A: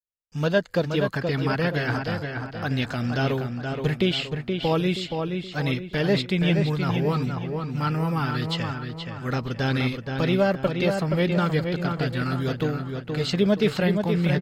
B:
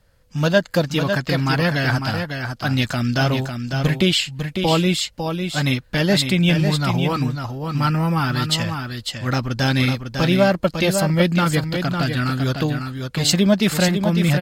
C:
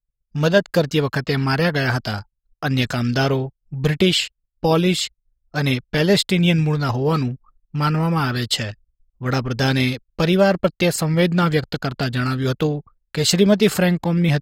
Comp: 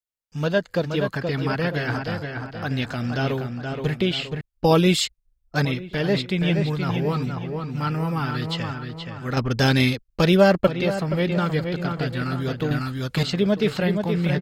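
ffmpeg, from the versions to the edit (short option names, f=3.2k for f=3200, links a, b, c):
-filter_complex "[2:a]asplit=2[a][b];[0:a]asplit=4[c][d][e][f];[c]atrim=end=4.412[g];[a]atrim=start=4.408:end=5.652[h];[d]atrim=start=5.648:end=9.372[i];[b]atrim=start=9.368:end=10.672[j];[e]atrim=start=10.668:end=12.712[k];[1:a]atrim=start=12.708:end=13.232[l];[f]atrim=start=13.228[m];[g][h]acrossfade=d=0.004:c1=hsin:c2=hsin[n];[n][i]acrossfade=d=0.004:c1=hsin:c2=hsin[o];[o][j]acrossfade=d=0.004:c1=hsin:c2=hsin[p];[p][k]acrossfade=d=0.004:c1=hsin:c2=hsin[q];[q][l]acrossfade=d=0.004:c1=hsin:c2=hsin[r];[r][m]acrossfade=d=0.004:c1=hsin:c2=hsin"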